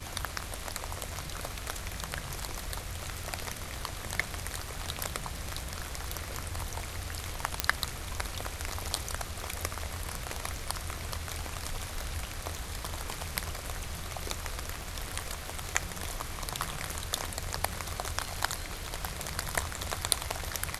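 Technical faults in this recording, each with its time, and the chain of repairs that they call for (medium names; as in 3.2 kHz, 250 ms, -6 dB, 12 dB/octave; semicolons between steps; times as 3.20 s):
crackle 35 per s -42 dBFS
7.60 s: pop -5 dBFS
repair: de-click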